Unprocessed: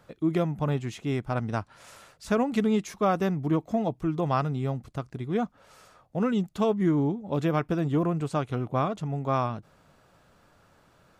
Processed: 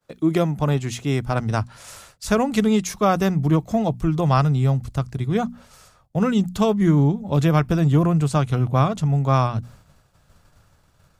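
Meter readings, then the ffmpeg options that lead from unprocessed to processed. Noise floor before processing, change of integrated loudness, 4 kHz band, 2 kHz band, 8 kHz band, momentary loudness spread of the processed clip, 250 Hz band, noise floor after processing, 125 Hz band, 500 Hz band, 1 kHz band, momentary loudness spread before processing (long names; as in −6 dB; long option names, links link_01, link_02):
−62 dBFS, +7.5 dB, +9.5 dB, +6.5 dB, can't be measured, 8 LU, +6.5 dB, −59 dBFS, +10.5 dB, +5.0 dB, +6.0 dB, 8 LU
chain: -filter_complex "[0:a]asubboost=boost=4:cutoff=140,agate=range=-33dB:threshold=-48dB:ratio=3:detection=peak,bandreject=frequency=60:width_type=h:width=6,bandreject=frequency=120:width_type=h:width=6,bandreject=frequency=180:width_type=h:width=6,bandreject=frequency=240:width_type=h:width=6,acrossover=split=150|4300[link_01][link_02][link_03];[link_03]acontrast=81[link_04];[link_01][link_02][link_04]amix=inputs=3:normalize=0,volume=6.5dB"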